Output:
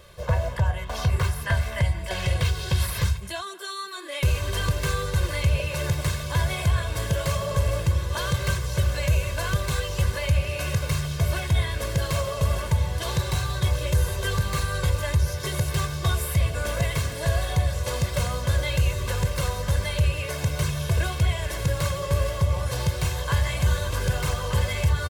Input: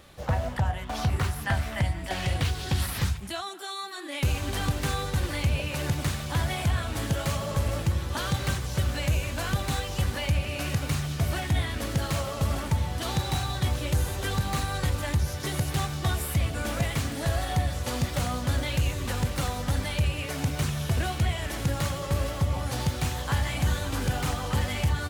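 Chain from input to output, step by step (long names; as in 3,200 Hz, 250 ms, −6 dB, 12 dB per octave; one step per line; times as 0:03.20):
comb filter 1.9 ms, depth 83%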